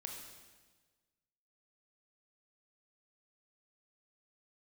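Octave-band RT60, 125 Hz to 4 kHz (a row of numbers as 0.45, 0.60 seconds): 1.6, 1.5, 1.4, 1.3, 1.3, 1.3 seconds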